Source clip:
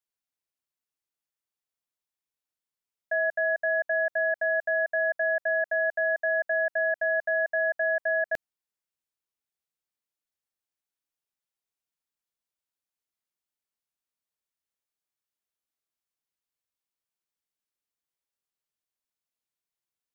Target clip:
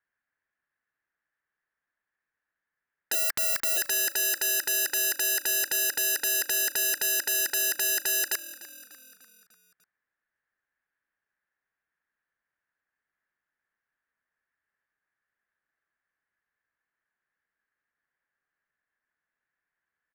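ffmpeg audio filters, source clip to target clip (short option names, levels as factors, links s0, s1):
-filter_complex "[0:a]asplit=3[s0][s1][s2];[s0]afade=t=out:st=3.13:d=0.02[s3];[s1]acontrast=30,afade=t=in:st=3.13:d=0.02,afade=t=out:st=3.76:d=0.02[s4];[s2]afade=t=in:st=3.76:d=0.02[s5];[s3][s4][s5]amix=inputs=3:normalize=0,lowpass=f=1700:t=q:w=7,aeval=exprs='0.15*sin(PI/2*2.24*val(0)/0.15)':c=same,asplit=6[s6][s7][s8][s9][s10][s11];[s7]adelay=297,afreqshift=-41,volume=0.141[s12];[s8]adelay=594,afreqshift=-82,volume=0.075[s13];[s9]adelay=891,afreqshift=-123,volume=0.0398[s14];[s10]adelay=1188,afreqshift=-164,volume=0.0211[s15];[s11]adelay=1485,afreqshift=-205,volume=0.0111[s16];[s6][s12][s13][s14][s15][s16]amix=inputs=6:normalize=0,volume=0.473"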